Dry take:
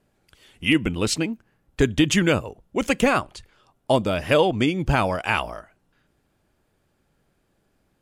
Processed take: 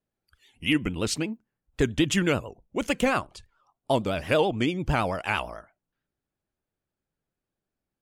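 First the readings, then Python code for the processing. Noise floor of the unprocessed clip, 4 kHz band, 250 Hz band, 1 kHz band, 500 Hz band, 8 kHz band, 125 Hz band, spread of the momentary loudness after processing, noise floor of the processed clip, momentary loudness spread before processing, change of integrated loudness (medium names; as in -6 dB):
-69 dBFS, -4.5 dB, -4.5 dB, -4.5 dB, -4.5 dB, -4.5 dB, -4.5 dB, 10 LU, under -85 dBFS, 10 LU, -4.5 dB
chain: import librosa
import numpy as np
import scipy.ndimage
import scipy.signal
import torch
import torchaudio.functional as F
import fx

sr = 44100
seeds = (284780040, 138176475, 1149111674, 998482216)

y = fx.noise_reduce_blind(x, sr, reduce_db=15)
y = fx.vibrato(y, sr, rate_hz=9.0, depth_cents=92.0)
y = F.gain(torch.from_numpy(y), -4.5).numpy()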